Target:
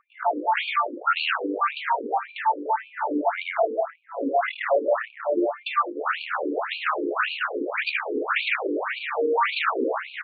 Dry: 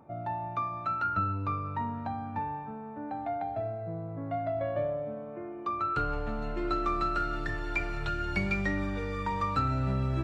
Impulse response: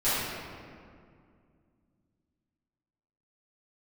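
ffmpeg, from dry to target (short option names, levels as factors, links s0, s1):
-filter_complex "[0:a]acrossover=split=240|3200[s0][s1][s2];[s1]acontrast=81[s3];[s0][s3][s2]amix=inputs=3:normalize=0,lowshelf=f=290:g=6.5,acrossover=split=280|3000[s4][s5][s6];[s5]acompressor=threshold=0.0316:ratio=2[s7];[s4][s7][s6]amix=inputs=3:normalize=0,lowshelf=f=62:g=9.5,asoftclip=type=hard:threshold=0.0794,afftdn=nr=21:nf=-46,aecho=1:1:110|187|240.9|278.6|305:0.631|0.398|0.251|0.158|0.1,aeval=exprs='val(0)+0.0158*(sin(2*PI*50*n/s)+sin(2*PI*2*50*n/s)/2+sin(2*PI*3*50*n/s)/3+sin(2*PI*4*50*n/s)/4+sin(2*PI*5*50*n/s)/5)':c=same,aeval=exprs='0.266*sin(PI/2*3.98*val(0)/0.266)':c=same,alimiter=limit=0.188:level=0:latency=1:release=10,afftfilt=real='re*between(b*sr/1024,360*pow(3300/360,0.5+0.5*sin(2*PI*1.8*pts/sr))/1.41,360*pow(3300/360,0.5+0.5*sin(2*PI*1.8*pts/sr))*1.41)':imag='im*between(b*sr/1024,360*pow(3300/360,0.5+0.5*sin(2*PI*1.8*pts/sr))/1.41,360*pow(3300/360,0.5+0.5*sin(2*PI*1.8*pts/sr))*1.41)':win_size=1024:overlap=0.75,volume=1.12"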